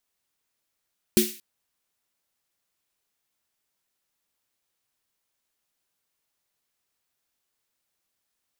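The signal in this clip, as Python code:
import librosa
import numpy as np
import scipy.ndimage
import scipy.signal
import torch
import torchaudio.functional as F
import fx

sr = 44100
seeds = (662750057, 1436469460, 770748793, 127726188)

y = fx.drum_snare(sr, seeds[0], length_s=0.23, hz=220.0, second_hz=360.0, noise_db=-5, noise_from_hz=2100.0, decay_s=0.25, noise_decay_s=0.44)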